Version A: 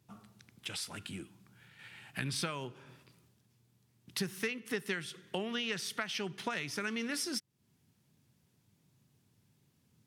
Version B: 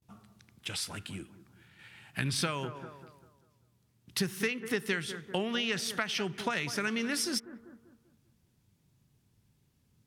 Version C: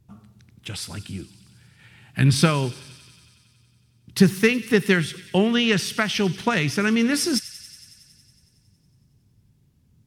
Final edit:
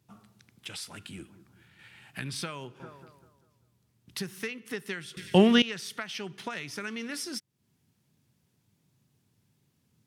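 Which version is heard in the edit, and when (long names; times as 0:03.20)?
A
0:01.18–0:02.02: punch in from B
0:02.80–0:04.15: punch in from B
0:05.17–0:05.62: punch in from C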